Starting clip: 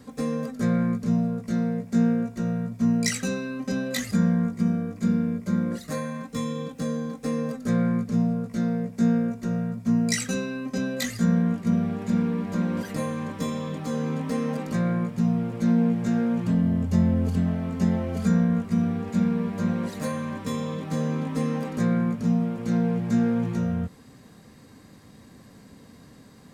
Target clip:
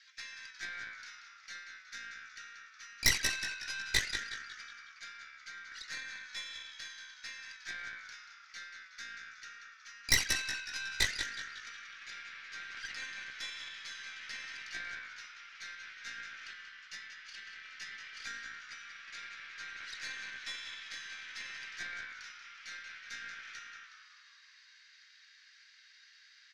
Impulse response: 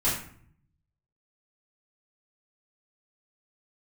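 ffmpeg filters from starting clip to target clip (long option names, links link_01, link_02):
-filter_complex "[0:a]asuperpass=centerf=3100:order=12:qfactor=0.69,asplit=7[link_01][link_02][link_03][link_04][link_05][link_06][link_07];[link_02]adelay=184,afreqshift=-70,volume=-8dB[link_08];[link_03]adelay=368,afreqshift=-140,volume=-13.7dB[link_09];[link_04]adelay=552,afreqshift=-210,volume=-19.4dB[link_10];[link_05]adelay=736,afreqshift=-280,volume=-25dB[link_11];[link_06]adelay=920,afreqshift=-350,volume=-30.7dB[link_12];[link_07]adelay=1104,afreqshift=-420,volume=-36.4dB[link_13];[link_01][link_08][link_09][link_10][link_11][link_12][link_13]amix=inputs=7:normalize=0,aeval=exprs='0.2*(cos(1*acos(clip(val(0)/0.2,-1,1)))-cos(1*PI/2))+0.0398*(cos(6*acos(clip(val(0)/0.2,-1,1)))-cos(6*PI/2))':channel_layout=same,volume=1dB"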